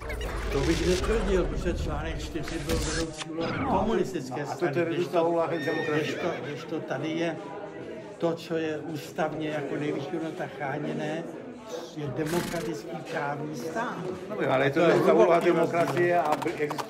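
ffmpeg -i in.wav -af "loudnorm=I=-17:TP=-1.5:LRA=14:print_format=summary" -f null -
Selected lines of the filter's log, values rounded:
Input Integrated:    -27.2 LUFS
Input True Peak:      -9.9 dBTP
Input LRA:             8.6 LU
Input Threshold:     -37.4 LUFS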